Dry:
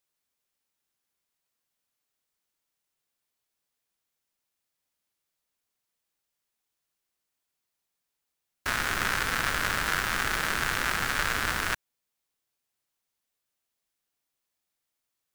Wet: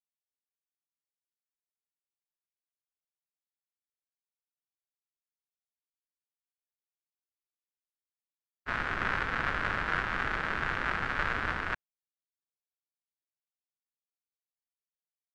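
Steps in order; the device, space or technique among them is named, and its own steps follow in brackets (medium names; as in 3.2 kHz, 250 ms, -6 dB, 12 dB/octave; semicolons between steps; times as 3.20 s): hearing-loss simulation (low-pass 2.2 kHz 12 dB/octave; expander -26 dBFS)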